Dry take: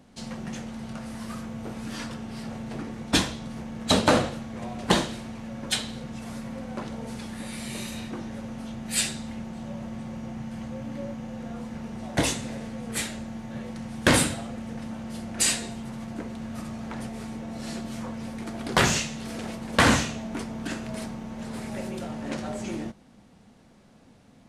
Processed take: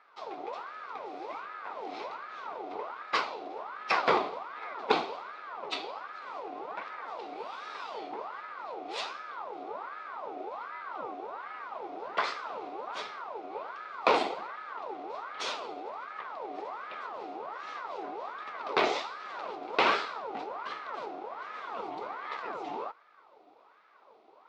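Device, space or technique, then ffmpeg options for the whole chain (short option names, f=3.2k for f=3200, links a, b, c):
voice changer toy: -af "aeval=exprs='val(0)*sin(2*PI*1000*n/s+1000*0.5/1.3*sin(2*PI*1.3*n/s))':c=same,highpass=400,equalizer=f=430:t=q:w=4:g=4,equalizer=f=1.7k:t=q:w=4:g=-10,equalizer=f=3k:t=q:w=4:g=-6,lowpass=f=3.9k:w=0.5412,lowpass=f=3.9k:w=1.3066"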